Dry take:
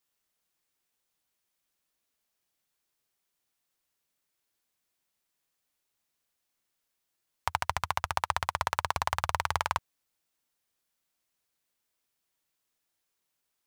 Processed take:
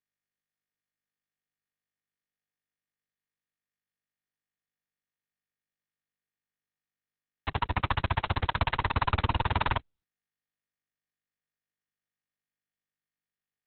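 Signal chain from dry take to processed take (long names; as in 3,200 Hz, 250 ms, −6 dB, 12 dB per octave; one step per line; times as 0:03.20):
fuzz pedal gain 46 dB, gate −45 dBFS
level −6.5 dB
Opus 6 kbit/s 48,000 Hz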